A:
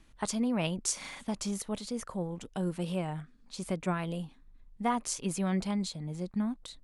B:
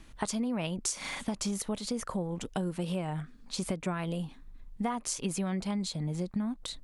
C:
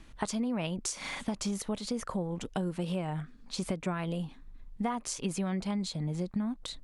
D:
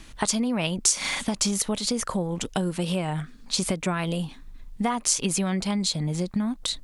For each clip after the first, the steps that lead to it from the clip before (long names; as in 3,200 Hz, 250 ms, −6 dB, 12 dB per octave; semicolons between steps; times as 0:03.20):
downward compressor, threshold −37 dBFS, peak gain reduction 12.5 dB; level +7.5 dB
high-shelf EQ 9,400 Hz −8 dB
high-shelf EQ 2,700 Hz +9.5 dB; level +6 dB